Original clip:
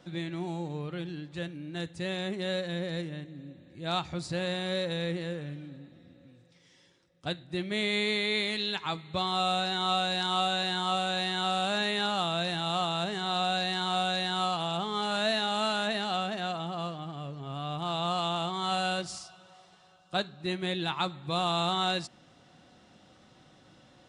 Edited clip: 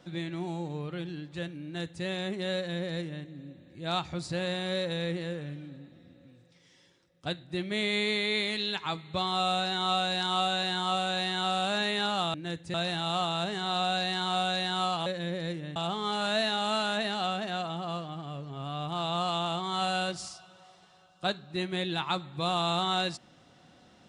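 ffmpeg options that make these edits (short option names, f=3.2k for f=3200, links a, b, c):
-filter_complex "[0:a]asplit=5[a][b][c][d][e];[a]atrim=end=12.342[f];[b]atrim=start=1.638:end=2.042[g];[c]atrim=start=12.338:end=14.662[h];[d]atrim=start=2.548:end=3.252[i];[e]atrim=start=14.658[j];[f][g]acrossfade=d=0.004:c1=hsin:c2=hsin[k];[k][h]acrossfade=d=0.004:c1=hsin:c2=hsin[l];[l][i]acrossfade=d=0.004:c1=hsin:c2=hsin[m];[m][j]acrossfade=d=0.004:c1=hsin:c2=hsin"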